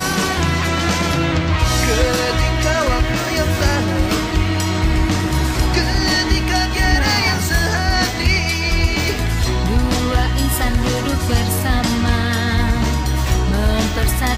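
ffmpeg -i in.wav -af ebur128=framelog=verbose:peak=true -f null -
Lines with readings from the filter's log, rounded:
Integrated loudness:
  I:         -17.2 LUFS
  Threshold: -27.2 LUFS
Loudness range:
  LRA:         1.6 LU
  Threshold: -37.1 LUFS
  LRA low:   -17.8 LUFS
  LRA high:  -16.2 LUFS
True peak:
  Peak:       -3.1 dBFS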